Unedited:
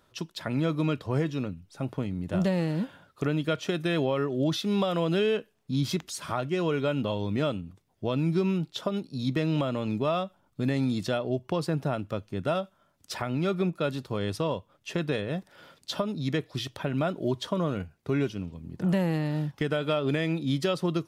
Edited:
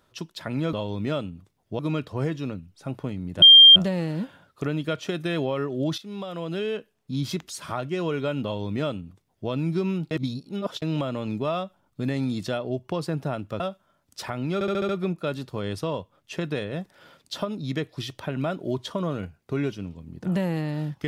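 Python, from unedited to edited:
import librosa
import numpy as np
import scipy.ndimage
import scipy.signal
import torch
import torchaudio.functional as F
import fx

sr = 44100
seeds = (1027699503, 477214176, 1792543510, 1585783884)

y = fx.edit(x, sr, fx.insert_tone(at_s=2.36, length_s=0.34, hz=3190.0, db=-6.5),
    fx.fade_in_from(start_s=4.58, length_s=1.71, curve='qsin', floor_db=-13.0),
    fx.duplicate(start_s=7.04, length_s=1.06, to_s=0.73),
    fx.reverse_span(start_s=8.71, length_s=0.71),
    fx.cut(start_s=12.2, length_s=0.32),
    fx.stutter(start_s=13.46, slice_s=0.07, count=6), tone=tone)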